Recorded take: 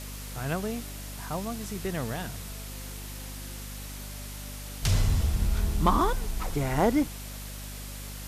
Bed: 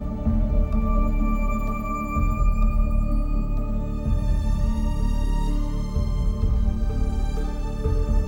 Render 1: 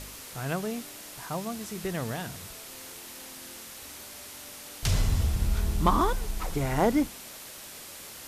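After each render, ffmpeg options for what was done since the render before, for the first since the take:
-af "bandreject=f=50:t=h:w=4,bandreject=f=100:t=h:w=4,bandreject=f=150:t=h:w=4,bandreject=f=200:t=h:w=4,bandreject=f=250:t=h:w=4"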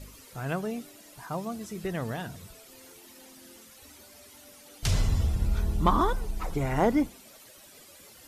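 -af "afftdn=nr=12:nf=-44"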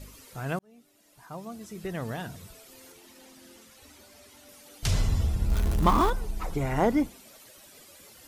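-filter_complex "[0:a]asettb=1/sr,asplit=3[s0][s1][s2];[s0]atrim=end=2.924[s3];[s1]atrim=start=2.92:end=4.49,asetpts=PTS-STARTPTS,afade=t=in:d=0.004:c=qsin,afade=t=out:st=1.566:d=0.004:c=qsin,highshelf=f=9000:g=-7[s4];[s2]atrim=start=4.486[s5];[s3][s4]acrossfade=d=0.004:c1=hsin:c2=qsin[s6];[s6][s5]acrossfade=d=0.004:c1=qsin:c2=hsin,asettb=1/sr,asplit=3[s7][s8][s9];[s7]atrim=end=5.504[s10];[s8]atrim=start=5.5:end=6.1,asetpts=PTS-STARTPTS,afade=t=in:d=0.004:c=qsin,afade=t=out:st=0.596:d=0.004:c=qsin,aeval=exprs='val(0)+0.5*0.0355*sgn(val(0))':c=same[s11];[s9]atrim=start=6.096[s12];[s10][s11]acrossfade=d=0.004:c1=hsin:c2=qsin[s13];[s13][s12]acrossfade=d=0.004:c1=qsin:c2=hsin,asplit=2[s14][s15];[s14]atrim=end=0.59,asetpts=PTS-STARTPTS,afade=t=out:st=0.586:d=0.004:c=hsin[s16];[s15]atrim=start=0.59,asetpts=PTS-STARTPTS,afade=t=in:d=1.64[s17];[s16][s17]concat=n=2:v=0:a=1"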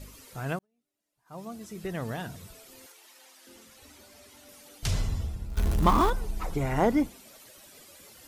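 -filter_complex "[0:a]asettb=1/sr,asplit=3[s0][s1][s2];[s0]atrim=end=2.864[s3];[s1]atrim=start=2.86:end=3.47,asetpts=PTS-STARTPTS,afade=t=in:d=0.004:c=qsin,afade=t=out:st=0.606:d=0.004:c=qsin,highpass=730[s4];[s2]atrim=start=3.466[s5];[s3][s4]acrossfade=d=0.004:c1=hsin:c2=qsin[s6];[s6][s5]acrossfade=d=0.004:c1=qsin:c2=hsin,asplit=4[s7][s8][s9][s10];[s7]atrim=end=0.67,asetpts=PTS-STARTPTS,afade=t=out:st=0.52:d=0.15:silence=0.0749894[s11];[s8]atrim=start=0.67:end=1.25,asetpts=PTS-STARTPTS,volume=0.075[s12];[s9]atrim=start=1.25:end=5.57,asetpts=PTS-STARTPTS,afade=t=in:d=0.15:silence=0.0749894,afade=t=out:st=3.38:d=0.94:silence=0.199526[s13];[s10]atrim=start=5.57,asetpts=PTS-STARTPTS,afade=t=in:d=0.004:c=hsin:silence=0.199526[s14];[s11][s12][s13][s14]concat=n=4:v=0:a=1"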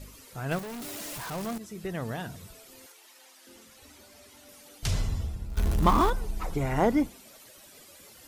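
-filter_complex "[0:a]asettb=1/sr,asplit=3[s0][s1][s2];[s0]atrim=end=0.514[s3];[s1]atrim=start=0.51:end=1.58,asetpts=PTS-STARTPTS,afade=t=in:d=0.004:c=qsin,afade=t=out:st=1.066:d=0.004:c=qsin,aeval=exprs='val(0)+0.5*0.0266*sgn(val(0))':c=same[s4];[s2]atrim=start=1.576[s5];[s3][s4]acrossfade=d=0.004:c1=hsin:c2=qsin[s6];[s6][s5]acrossfade=d=0.004:c1=qsin:c2=hsin"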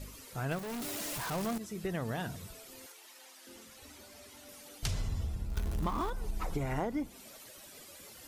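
-af "acompressor=threshold=0.0316:ratio=12"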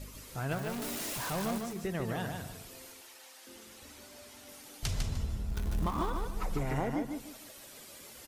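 -af "aecho=1:1:151|302|453|604:0.562|0.157|0.0441|0.0123"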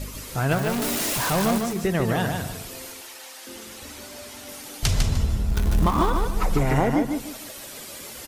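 -af "volume=3.98"

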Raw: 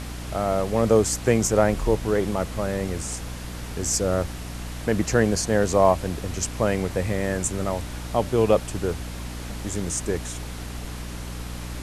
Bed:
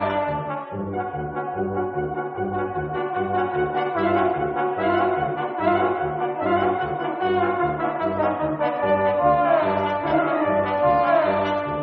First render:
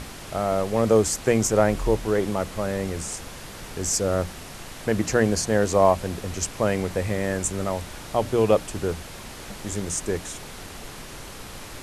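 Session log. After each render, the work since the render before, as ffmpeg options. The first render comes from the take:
-af "bandreject=f=60:t=h:w=6,bandreject=f=120:t=h:w=6,bandreject=f=180:t=h:w=6,bandreject=f=240:t=h:w=6,bandreject=f=300:t=h:w=6"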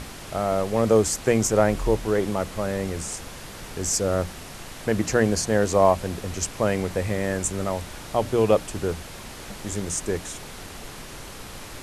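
-af anull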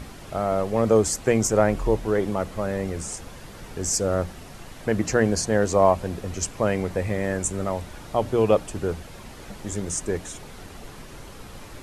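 -af "afftdn=nr=7:nf=-40"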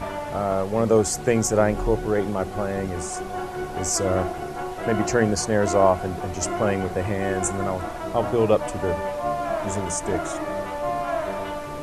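-filter_complex "[1:a]volume=0.398[s0];[0:a][s0]amix=inputs=2:normalize=0"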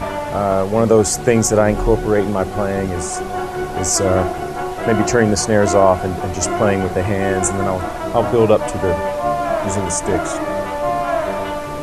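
-af "volume=2.24,alimiter=limit=0.891:level=0:latency=1"

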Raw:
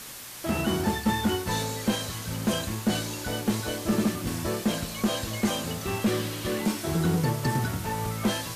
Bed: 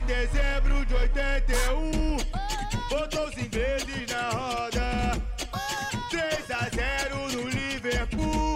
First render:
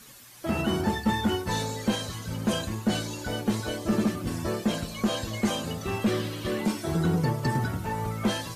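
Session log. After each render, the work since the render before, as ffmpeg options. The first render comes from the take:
-af "afftdn=nr=11:nf=-41"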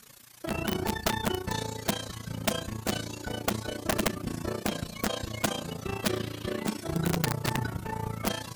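-af "aeval=exprs='(mod(7.5*val(0)+1,2)-1)/7.5':c=same,tremolo=f=29:d=0.824"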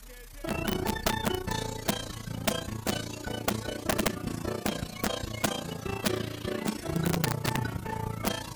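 -filter_complex "[1:a]volume=0.075[s0];[0:a][s0]amix=inputs=2:normalize=0"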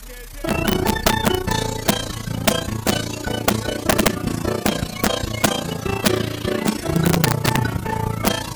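-af "volume=3.55"

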